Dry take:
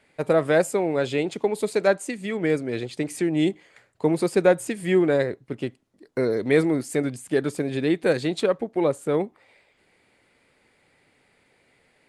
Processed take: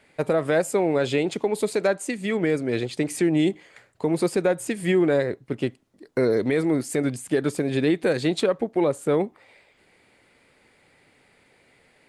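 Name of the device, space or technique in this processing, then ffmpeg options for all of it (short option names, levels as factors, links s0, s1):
stacked limiters: -af "alimiter=limit=0.282:level=0:latency=1:release=471,alimiter=limit=0.168:level=0:latency=1:release=99,volume=1.5"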